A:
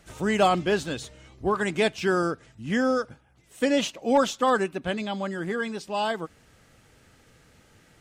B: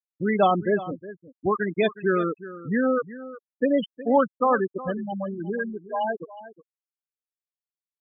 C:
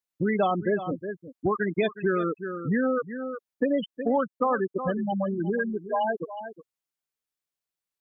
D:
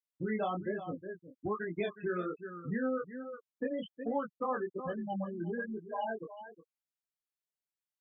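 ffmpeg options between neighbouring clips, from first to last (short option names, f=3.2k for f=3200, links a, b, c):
-af "afftfilt=real='re*gte(hypot(re,im),0.158)':imag='im*gte(hypot(re,im),0.158)':win_size=1024:overlap=0.75,aecho=1:1:364:0.158,volume=1.5dB"
-af "acompressor=threshold=-29dB:ratio=3,volume=5dB"
-af "flanger=delay=17.5:depth=6:speed=1.2,volume=-7dB"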